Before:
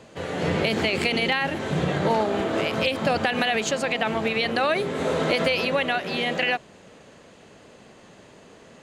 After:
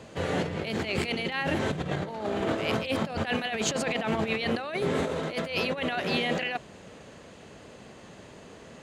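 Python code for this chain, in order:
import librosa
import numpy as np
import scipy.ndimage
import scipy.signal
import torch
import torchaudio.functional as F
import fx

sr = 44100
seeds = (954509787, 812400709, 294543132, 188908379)

y = scipy.signal.sosfilt(scipy.signal.butter(2, 46.0, 'highpass', fs=sr, output='sos'), x)
y = fx.low_shelf(y, sr, hz=77.0, db=10.0)
y = fx.over_compress(y, sr, threshold_db=-26.0, ratio=-0.5)
y = F.gain(torch.from_numpy(y), -2.5).numpy()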